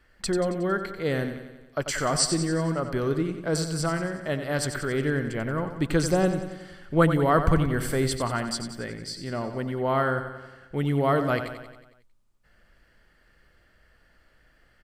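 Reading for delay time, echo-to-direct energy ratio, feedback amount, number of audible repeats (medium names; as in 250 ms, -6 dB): 91 ms, -7.5 dB, 58%, 6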